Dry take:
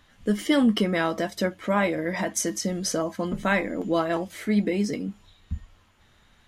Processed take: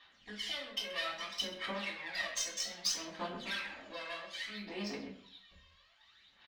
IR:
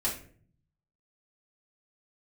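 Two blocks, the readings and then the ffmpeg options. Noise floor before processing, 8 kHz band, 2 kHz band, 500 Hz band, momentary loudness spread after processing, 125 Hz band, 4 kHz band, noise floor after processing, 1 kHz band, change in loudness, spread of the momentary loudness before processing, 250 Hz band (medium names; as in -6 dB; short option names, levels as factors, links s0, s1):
-60 dBFS, -8.0 dB, -9.5 dB, -19.0 dB, 10 LU, -23.5 dB, -2.0 dB, -66 dBFS, -14.5 dB, -12.5 dB, 10 LU, -23.5 dB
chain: -filter_complex "[0:a]acompressor=threshold=0.0562:ratio=6,aeval=exprs='clip(val(0),-1,0.0141)':c=same,aphaser=in_gain=1:out_gain=1:delay=1.9:decay=0.73:speed=0.62:type=sinusoidal,bandpass=f=4100:t=q:w=1.8:csg=0,adynamicsmooth=sensitivity=7.5:basefreq=4100,asplit=2[s0][s1];[s1]adelay=130,highpass=300,lowpass=3400,asoftclip=type=hard:threshold=0.0211,volume=0.282[s2];[s0][s2]amix=inputs=2:normalize=0[s3];[1:a]atrim=start_sample=2205,afade=t=out:st=0.4:d=0.01,atrim=end_sample=18081[s4];[s3][s4]afir=irnorm=-1:irlink=0"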